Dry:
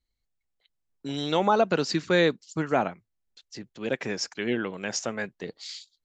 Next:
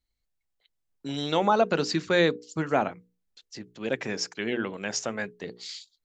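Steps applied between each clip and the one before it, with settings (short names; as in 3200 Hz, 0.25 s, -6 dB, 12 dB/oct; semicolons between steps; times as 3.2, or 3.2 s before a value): notches 60/120/180/240/300/360/420/480 Hz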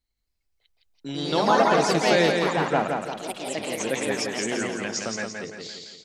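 echoes that change speed 0.263 s, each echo +3 st, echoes 3; on a send: feedback echo 0.17 s, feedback 47%, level -4.5 dB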